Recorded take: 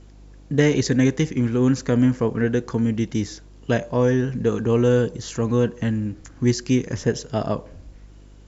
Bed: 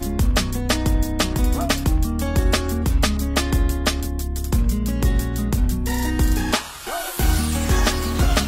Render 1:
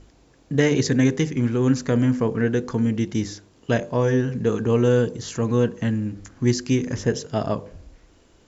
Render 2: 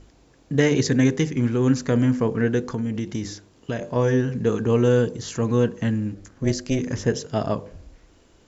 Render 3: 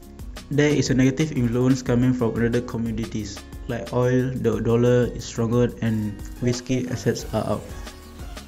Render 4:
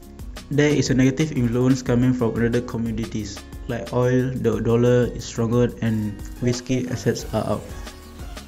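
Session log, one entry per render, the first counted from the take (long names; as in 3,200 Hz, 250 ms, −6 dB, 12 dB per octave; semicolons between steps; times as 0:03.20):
hum removal 50 Hz, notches 10
0:02.60–0:03.96: downward compressor, threshold −22 dBFS; 0:06.14–0:06.79: amplitude modulation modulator 270 Hz, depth 45%
mix in bed −18.5 dB
level +1 dB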